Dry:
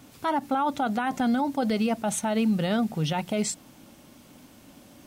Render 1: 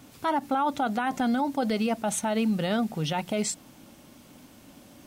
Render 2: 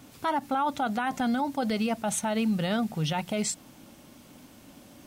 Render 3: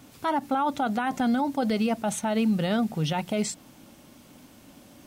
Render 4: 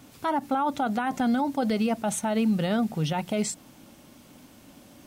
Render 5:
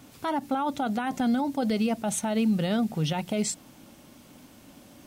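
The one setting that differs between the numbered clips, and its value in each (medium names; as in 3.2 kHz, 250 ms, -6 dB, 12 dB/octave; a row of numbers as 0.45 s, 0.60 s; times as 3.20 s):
dynamic bell, frequency: 110 Hz, 340 Hz, 9.6 kHz, 3.7 kHz, 1.2 kHz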